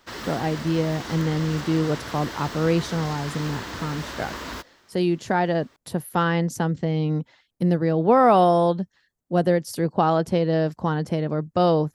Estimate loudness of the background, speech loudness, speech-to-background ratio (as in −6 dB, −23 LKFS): −34.5 LKFS, −23.5 LKFS, 11.0 dB